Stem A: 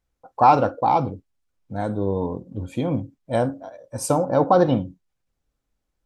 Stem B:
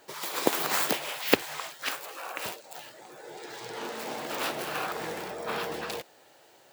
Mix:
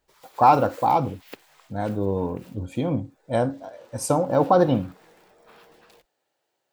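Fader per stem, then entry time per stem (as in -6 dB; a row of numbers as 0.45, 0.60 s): -1.0, -19.5 dB; 0.00, 0.00 s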